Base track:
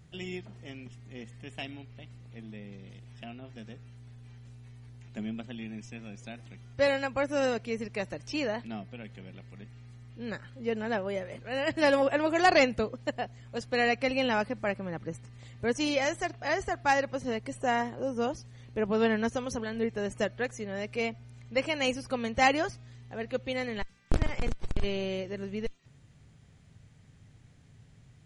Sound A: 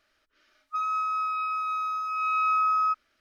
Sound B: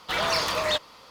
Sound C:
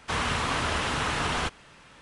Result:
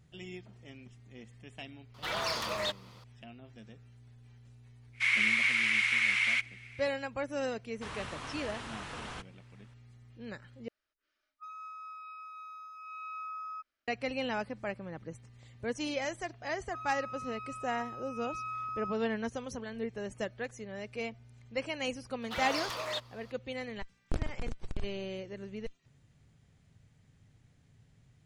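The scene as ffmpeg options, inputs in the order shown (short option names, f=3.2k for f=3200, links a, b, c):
-filter_complex "[2:a]asplit=2[a][b];[3:a]asplit=2[c][d];[1:a]asplit=2[e][f];[0:a]volume=-6.5dB[g];[c]highpass=f=2.2k:t=q:w=15[h];[b]highpass=210[i];[g]asplit=2[j][k];[j]atrim=end=10.684[l];[e]atrim=end=3.2,asetpts=PTS-STARTPTS,volume=-17.5dB[m];[k]atrim=start=13.876[n];[a]atrim=end=1.1,asetpts=PTS-STARTPTS,volume=-8.5dB,afade=t=in:d=0.004:c=hsin,afade=t=out:st=1.096:d=0.004:c=hsin,adelay=1940[o];[h]atrim=end=2.01,asetpts=PTS-STARTPTS,volume=-8dB,afade=t=in:d=0.1,afade=t=out:st=1.91:d=0.1,adelay=4920[p];[d]atrim=end=2.01,asetpts=PTS-STARTPTS,volume=-15dB,afade=t=in:d=0.004:c=hsin,afade=t=out:st=2.006:d=0.004:c=hsin,adelay=7730[q];[f]atrim=end=3.2,asetpts=PTS-STARTPTS,volume=-15dB,afade=t=in:d=0.004:c=hsin,afade=t=out:st=3.196:d=0.004:c=hsin,adelay=16000[r];[i]atrim=end=1.1,asetpts=PTS-STARTPTS,volume=-11dB,afade=t=in:d=0.004:c=hsin,afade=t=out:st=1.096:d=0.004:c=hsin,adelay=22220[s];[l][m]acrossfade=d=0.004:c1=hsin:c2=hsin[t];[t][n]acrossfade=d=0.004:c1=hsin:c2=hsin[u];[u][o][p][q][r][s]amix=inputs=6:normalize=0"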